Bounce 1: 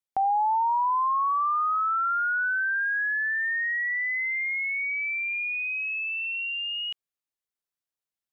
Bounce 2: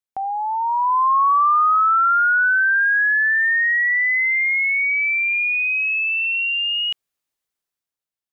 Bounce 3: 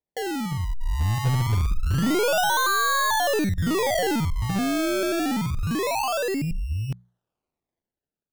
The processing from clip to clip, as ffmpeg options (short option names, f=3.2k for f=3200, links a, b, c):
-af "dynaudnorm=f=190:g=9:m=11dB,volume=-1.5dB"
-af "acrusher=samples=31:mix=1:aa=0.000001:lfo=1:lforange=31:lforate=0.26,bandreject=f=60:t=h:w=6,bandreject=f=120:t=h:w=6,bandreject=f=180:t=h:w=6,aeval=exprs='0.376*(cos(1*acos(clip(val(0)/0.376,-1,1)))-cos(1*PI/2))+0.0266*(cos(5*acos(clip(val(0)/0.376,-1,1)))-cos(5*PI/2))+0.0531*(cos(6*acos(clip(val(0)/0.376,-1,1)))-cos(6*PI/2))+0.0299*(cos(8*acos(clip(val(0)/0.376,-1,1)))-cos(8*PI/2))':c=same,volume=-6dB"